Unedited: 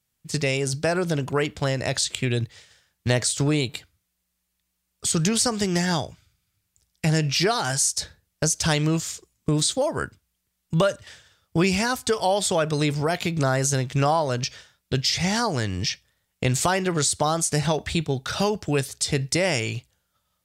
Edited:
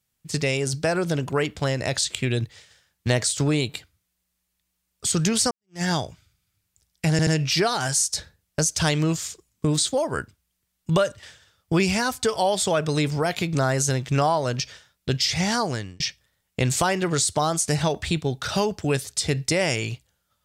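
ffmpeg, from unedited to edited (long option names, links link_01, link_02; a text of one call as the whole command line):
ffmpeg -i in.wav -filter_complex "[0:a]asplit=5[link_01][link_02][link_03][link_04][link_05];[link_01]atrim=end=5.51,asetpts=PTS-STARTPTS,afade=type=out:start_time=5.506:duration=0.004:curve=hsin[link_06];[link_02]atrim=start=5.51:end=7.192,asetpts=PTS-STARTPTS,afade=type=in:duration=0.31:curve=exp[link_07];[link_03]atrim=start=7.108:end=7.192[link_08];[link_04]atrim=start=7.108:end=15.84,asetpts=PTS-STARTPTS,afade=type=out:start_time=8.382:duration=0.35[link_09];[link_05]atrim=start=15.84,asetpts=PTS-STARTPTS,afade=type=in:duration=0.004:curve=hsin[link_10];[link_06][link_07]concat=n=2:v=0:a=1[link_11];[link_11][link_08]acrossfade=duration=0.004:curve1=hsin:curve2=hsin[link_12];[link_09][link_10]concat=n=2:v=0:a=1[link_13];[link_12][link_13]acrossfade=duration=0.004:curve1=hsin:curve2=hsin" out.wav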